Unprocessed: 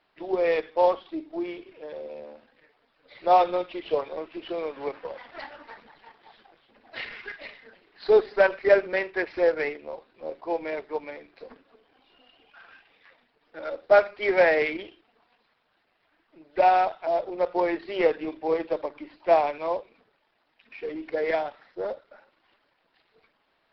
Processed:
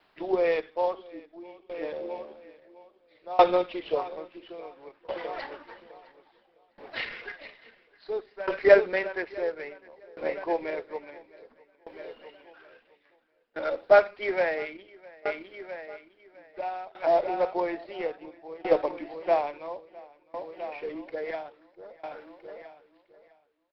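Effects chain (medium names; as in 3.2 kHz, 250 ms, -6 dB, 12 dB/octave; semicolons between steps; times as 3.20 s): on a send: feedback delay 657 ms, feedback 59%, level -14 dB; on the sum: sawtooth tremolo in dB decaying 0.59 Hz, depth 24 dB; trim +5.5 dB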